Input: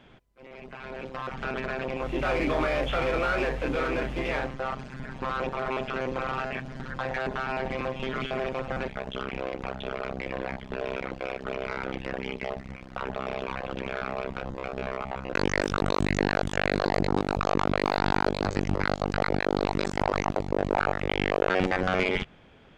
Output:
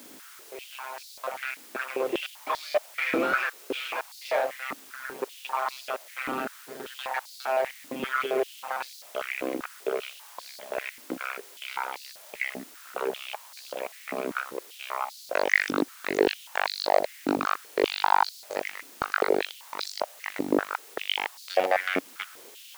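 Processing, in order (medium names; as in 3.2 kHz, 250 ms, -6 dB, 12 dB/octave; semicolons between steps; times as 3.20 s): trance gate "xxx..xxxxx.." 146 bpm -60 dB; word length cut 8-bit, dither triangular; step-sequenced high-pass 5.1 Hz 280–4400 Hz; trim -1.5 dB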